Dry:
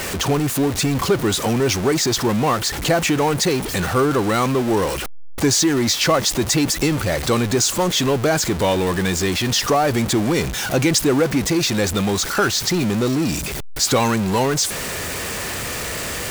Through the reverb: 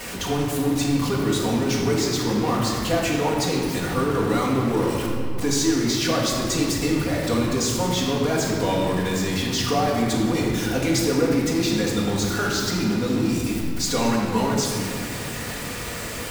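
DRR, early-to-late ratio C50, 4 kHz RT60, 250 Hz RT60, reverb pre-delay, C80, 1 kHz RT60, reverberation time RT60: -7.5 dB, 1.0 dB, 1.4 s, 3.9 s, 4 ms, 2.5 dB, 2.1 s, 2.2 s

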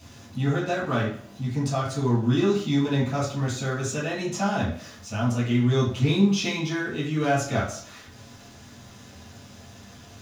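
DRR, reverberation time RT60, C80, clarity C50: -7.0 dB, 0.55 s, 9.5 dB, 5.0 dB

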